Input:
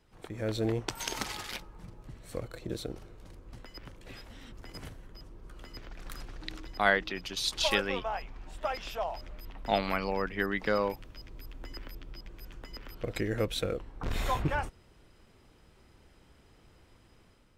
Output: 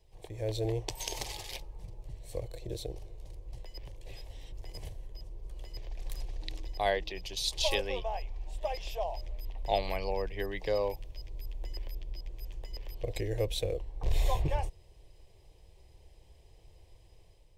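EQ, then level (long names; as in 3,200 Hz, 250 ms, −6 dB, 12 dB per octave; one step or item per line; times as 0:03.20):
low-shelf EQ 91 Hz +8 dB
phaser with its sweep stopped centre 570 Hz, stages 4
0.0 dB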